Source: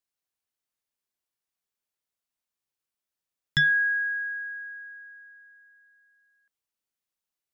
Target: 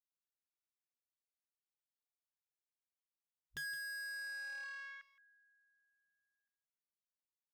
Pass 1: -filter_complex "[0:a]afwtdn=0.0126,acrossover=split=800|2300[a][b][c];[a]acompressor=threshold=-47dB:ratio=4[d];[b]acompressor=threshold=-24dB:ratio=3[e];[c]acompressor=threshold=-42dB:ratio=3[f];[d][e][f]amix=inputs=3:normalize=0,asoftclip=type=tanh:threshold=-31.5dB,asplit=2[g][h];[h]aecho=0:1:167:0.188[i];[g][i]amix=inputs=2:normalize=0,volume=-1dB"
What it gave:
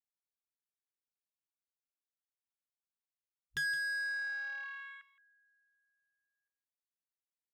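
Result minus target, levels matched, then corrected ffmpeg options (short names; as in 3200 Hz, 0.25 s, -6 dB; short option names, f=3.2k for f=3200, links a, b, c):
soft clip: distortion -5 dB
-filter_complex "[0:a]afwtdn=0.0126,acrossover=split=800|2300[a][b][c];[a]acompressor=threshold=-47dB:ratio=4[d];[b]acompressor=threshold=-24dB:ratio=3[e];[c]acompressor=threshold=-42dB:ratio=3[f];[d][e][f]amix=inputs=3:normalize=0,asoftclip=type=tanh:threshold=-41dB,asplit=2[g][h];[h]aecho=0:1:167:0.188[i];[g][i]amix=inputs=2:normalize=0,volume=-1dB"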